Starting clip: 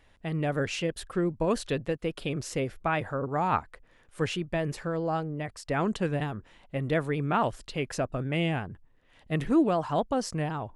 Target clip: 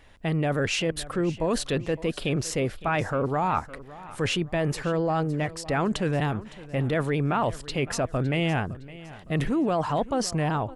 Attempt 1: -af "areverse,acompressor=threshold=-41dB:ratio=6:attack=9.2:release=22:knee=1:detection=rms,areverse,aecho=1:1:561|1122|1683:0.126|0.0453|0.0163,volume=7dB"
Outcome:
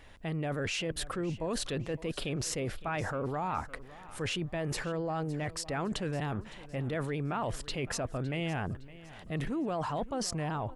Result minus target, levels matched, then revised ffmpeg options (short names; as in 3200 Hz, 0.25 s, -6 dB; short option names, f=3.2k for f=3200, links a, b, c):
compressor: peak gain reduction +8.5 dB
-af "areverse,acompressor=threshold=-30.5dB:ratio=6:attack=9.2:release=22:knee=1:detection=rms,areverse,aecho=1:1:561|1122|1683:0.126|0.0453|0.0163,volume=7dB"